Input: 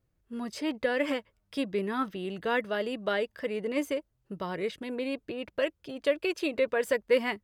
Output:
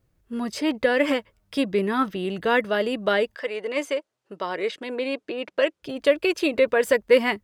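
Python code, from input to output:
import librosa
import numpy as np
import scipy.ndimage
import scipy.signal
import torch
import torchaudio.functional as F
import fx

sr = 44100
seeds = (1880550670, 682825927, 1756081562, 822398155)

y = fx.bandpass_edges(x, sr, low_hz=fx.line((3.34, 550.0), (5.82, 260.0)), high_hz=7900.0, at=(3.34, 5.82), fade=0.02)
y = F.gain(torch.from_numpy(y), 7.5).numpy()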